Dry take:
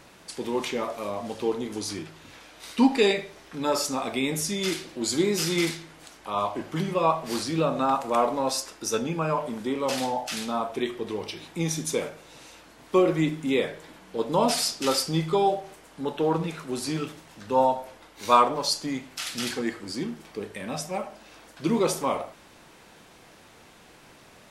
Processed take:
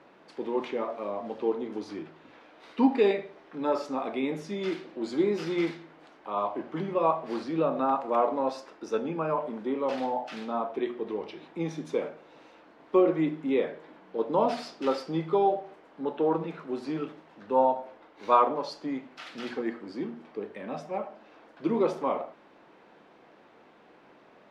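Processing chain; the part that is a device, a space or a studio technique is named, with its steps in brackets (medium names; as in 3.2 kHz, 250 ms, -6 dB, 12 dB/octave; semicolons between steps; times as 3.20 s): three-band isolator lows -20 dB, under 190 Hz, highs -18 dB, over 4.9 kHz; through cloth (treble shelf 2.2 kHz -15 dB); hum notches 60/120/180/240 Hz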